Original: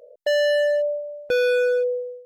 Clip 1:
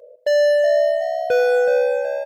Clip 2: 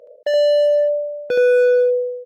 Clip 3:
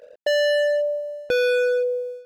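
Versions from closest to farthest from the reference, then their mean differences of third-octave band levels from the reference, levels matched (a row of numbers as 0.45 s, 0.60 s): 3, 2, 1; 1.0 dB, 2.5 dB, 5.5 dB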